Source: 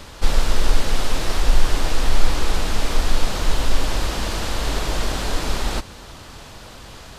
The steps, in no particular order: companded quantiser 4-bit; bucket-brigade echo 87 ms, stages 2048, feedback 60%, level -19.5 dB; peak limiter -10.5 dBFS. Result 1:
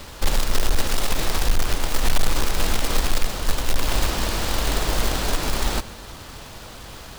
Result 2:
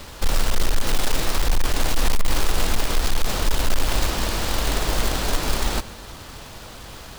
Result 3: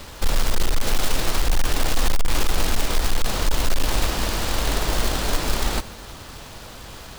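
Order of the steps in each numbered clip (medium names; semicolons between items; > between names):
companded quantiser > peak limiter > bucket-brigade echo; peak limiter > companded quantiser > bucket-brigade echo; peak limiter > bucket-brigade echo > companded quantiser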